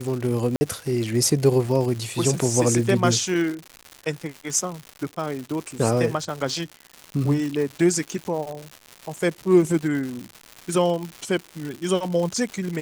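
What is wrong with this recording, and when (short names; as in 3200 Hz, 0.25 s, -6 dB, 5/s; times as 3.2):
crackle 240/s -29 dBFS
0.56–0.61 gap 50 ms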